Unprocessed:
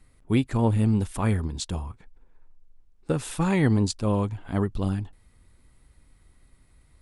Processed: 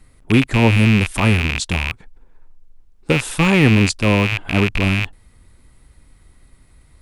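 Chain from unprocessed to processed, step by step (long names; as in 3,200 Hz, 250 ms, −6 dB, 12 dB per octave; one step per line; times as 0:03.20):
loose part that buzzes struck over −36 dBFS, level −16 dBFS
level +8 dB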